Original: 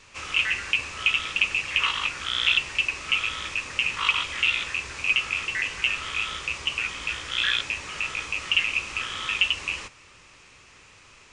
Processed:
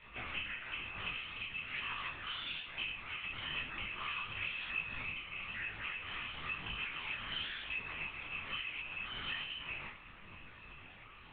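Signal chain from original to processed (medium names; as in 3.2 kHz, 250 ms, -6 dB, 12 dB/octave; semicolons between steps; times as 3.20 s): low-pass 2.9 kHz 12 dB/octave; compression 5:1, threshold -37 dBFS, peak gain reduction 16.5 dB; inharmonic resonator 110 Hz, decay 0.38 s, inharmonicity 0.03; flutter echo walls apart 6.2 m, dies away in 0.62 s; LPC vocoder at 8 kHz whisper; detune thickener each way 36 cents; trim +11 dB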